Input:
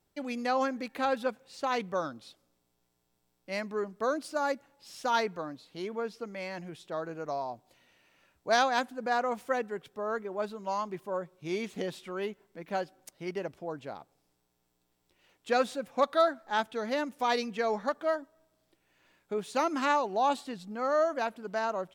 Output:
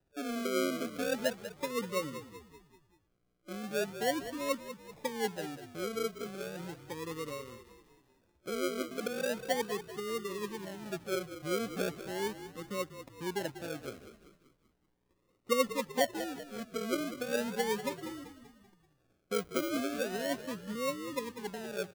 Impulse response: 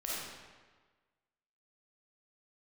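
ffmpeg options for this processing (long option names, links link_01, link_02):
-filter_complex "[0:a]afftfilt=real='re*(1-between(b*sr/4096,580,9400))':imag='im*(1-between(b*sr/4096,580,9400))':win_size=4096:overlap=0.75,acrusher=samples=38:mix=1:aa=0.000001:lfo=1:lforange=22.8:lforate=0.37,asplit=2[link_01][link_02];[link_02]asplit=5[link_03][link_04][link_05][link_06][link_07];[link_03]adelay=193,afreqshift=-41,volume=-12dB[link_08];[link_04]adelay=386,afreqshift=-82,volume=-18.2dB[link_09];[link_05]adelay=579,afreqshift=-123,volume=-24.4dB[link_10];[link_06]adelay=772,afreqshift=-164,volume=-30.6dB[link_11];[link_07]adelay=965,afreqshift=-205,volume=-36.8dB[link_12];[link_08][link_09][link_10][link_11][link_12]amix=inputs=5:normalize=0[link_13];[link_01][link_13]amix=inputs=2:normalize=0"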